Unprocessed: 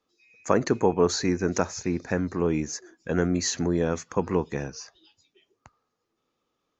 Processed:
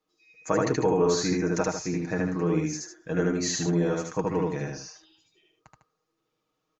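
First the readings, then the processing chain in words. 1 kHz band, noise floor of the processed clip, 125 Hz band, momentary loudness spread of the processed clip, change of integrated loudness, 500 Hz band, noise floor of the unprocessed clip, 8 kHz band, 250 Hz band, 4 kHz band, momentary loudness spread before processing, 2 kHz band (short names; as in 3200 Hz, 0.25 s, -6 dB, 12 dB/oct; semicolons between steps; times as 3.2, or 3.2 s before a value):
-1.0 dB, -79 dBFS, +0.5 dB, 11 LU, -0.5 dB, -0.5 dB, -79 dBFS, n/a, -0.5 dB, -1.0 dB, 12 LU, -0.5 dB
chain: comb 6.4 ms; loudspeakers at several distances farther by 26 m -1 dB, 52 m -9 dB; gain -5 dB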